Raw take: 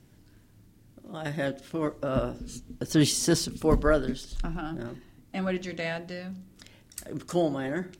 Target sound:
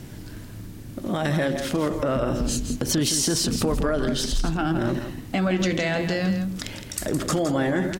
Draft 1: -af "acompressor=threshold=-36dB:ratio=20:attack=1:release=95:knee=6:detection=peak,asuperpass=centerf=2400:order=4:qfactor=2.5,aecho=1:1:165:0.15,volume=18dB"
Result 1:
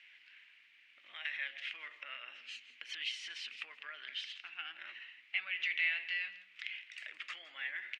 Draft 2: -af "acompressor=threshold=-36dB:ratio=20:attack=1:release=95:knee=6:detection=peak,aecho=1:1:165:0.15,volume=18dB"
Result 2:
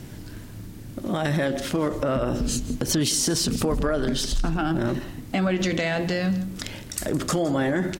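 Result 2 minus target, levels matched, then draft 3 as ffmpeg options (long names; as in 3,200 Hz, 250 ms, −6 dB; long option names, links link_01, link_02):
echo-to-direct −8 dB
-af "acompressor=threshold=-36dB:ratio=20:attack=1:release=95:knee=6:detection=peak,aecho=1:1:165:0.376,volume=18dB"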